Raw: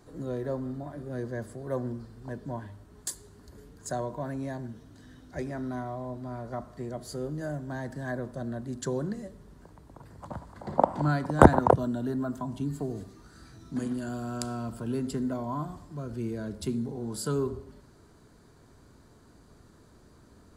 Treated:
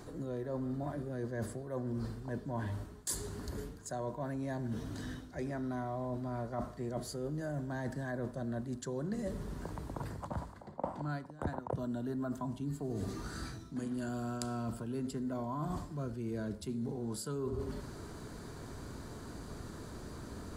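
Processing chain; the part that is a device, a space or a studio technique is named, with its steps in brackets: compression on the reversed sound (reverse; compression 16:1, threshold -45 dBFS, peak gain reduction 36.5 dB; reverse); trim +10.5 dB

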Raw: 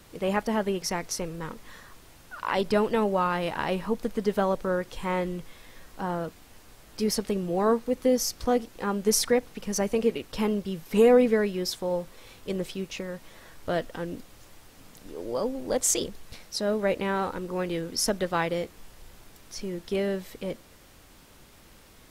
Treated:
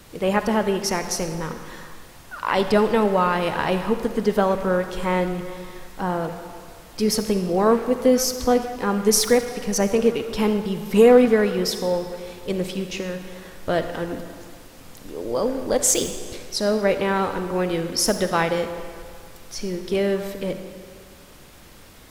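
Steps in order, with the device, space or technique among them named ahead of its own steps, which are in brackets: saturated reverb return (on a send at -5.5 dB: reverberation RT60 1.9 s, pre-delay 41 ms + saturation -26 dBFS, distortion -9 dB); on the sum: trim +5.5 dB

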